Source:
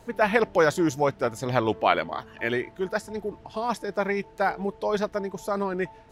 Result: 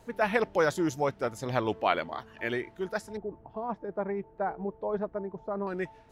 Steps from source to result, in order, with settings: 3.17–5.67 LPF 1000 Hz 12 dB/oct; gain -5 dB

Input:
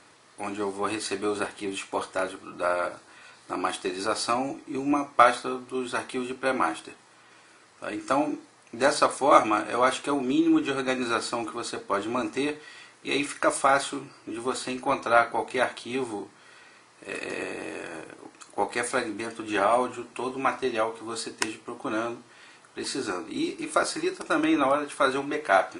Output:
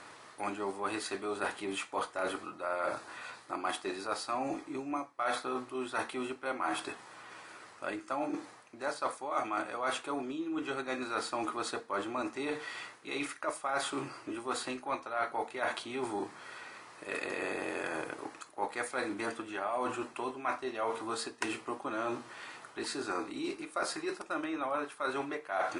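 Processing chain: reverse; compressor 20:1, threshold -35 dBFS, peak gain reduction 25 dB; reverse; bell 1100 Hz +6 dB 2.5 oct

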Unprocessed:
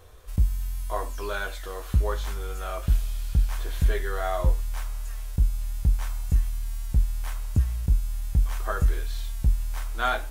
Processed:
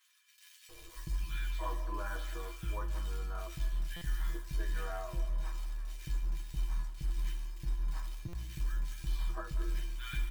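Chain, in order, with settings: LPF 3200 Hz 12 dB/oct; low shelf 190 Hz +3 dB; digital reverb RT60 0.68 s, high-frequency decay 0.8×, pre-delay 0.12 s, DRR 13.5 dB; reverse; compressor 6:1, threshold -24 dBFS, peak gain reduction 11.5 dB; reverse; comb 6.3 ms, depth 100%; companded quantiser 6-bit; dynamic EQ 470 Hz, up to -7 dB, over -49 dBFS, Q 0.73; resonator 340 Hz, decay 0.18 s, harmonics odd, mix 90%; bands offset in time highs, lows 0.69 s, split 1800 Hz; stuck buffer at 3.96/8.28, samples 256, times 8; gain +9 dB

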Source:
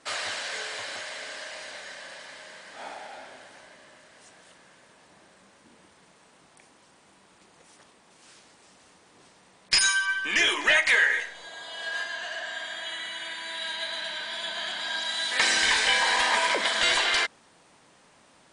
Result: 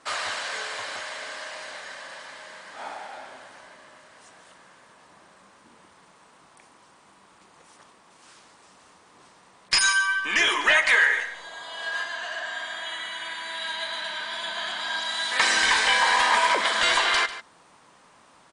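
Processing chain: bell 1100 Hz +7 dB 0.84 oct; echo 0.145 s -14.5 dB

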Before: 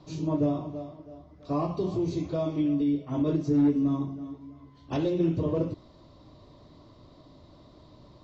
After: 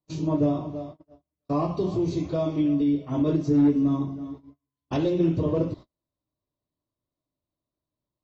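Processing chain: gate -42 dBFS, range -39 dB; gain +3 dB

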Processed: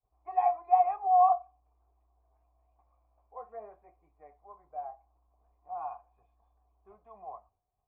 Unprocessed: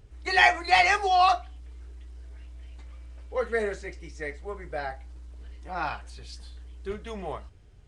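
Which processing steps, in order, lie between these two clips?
expander -47 dBFS; vocal tract filter a

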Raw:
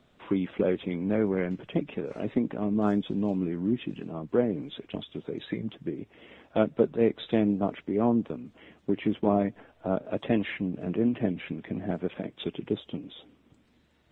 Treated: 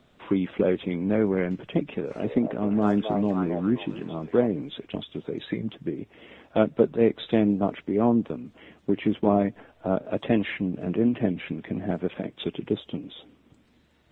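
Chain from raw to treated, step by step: 1.91–4.47 delay with a stepping band-pass 0.265 s, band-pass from 670 Hz, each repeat 0.7 oct, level -0.5 dB; gain +3 dB

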